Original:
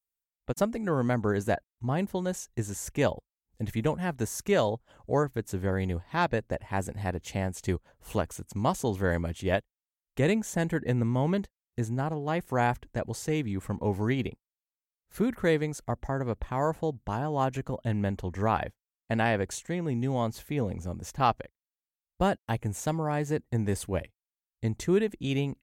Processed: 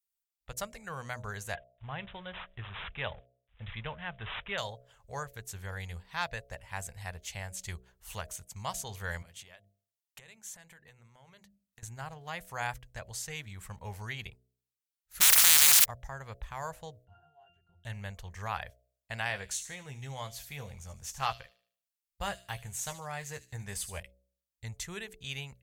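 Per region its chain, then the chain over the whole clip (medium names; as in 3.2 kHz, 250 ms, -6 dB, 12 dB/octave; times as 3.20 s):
1.55–4.58 s: companding laws mixed up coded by mu + careless resampling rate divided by 6×, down none, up filtered
9.22–11.83 s: high-pass 120 Hz + hum notches 50/100/150/200/250/300/350 Hz + compression 12:1, threshold -40 dBFS
15.20–15.84 s: spectral contrast reduction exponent 0.12 + high-pass 110 Hz + level flattener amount 100%
17.05–17.84 s: pitch-class resonator F, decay 0.48 s + tape noise reduction on one side only encoder only
19.28–24.00 s: doubling 15 ms -8.5 dB + feedback echo behind a high-pass 75 ms, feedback 37%, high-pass 3.9 kHz, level -9 dB
whole clip: amplifier tone stack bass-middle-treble 10-0-10; de-hum 62.32 Hz, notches 11; trim +2 dB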